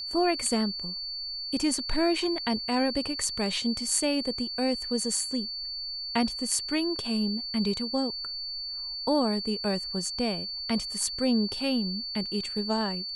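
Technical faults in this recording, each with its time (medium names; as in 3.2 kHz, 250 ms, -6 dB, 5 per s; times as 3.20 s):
whine 4.5 kHz -33 dBFS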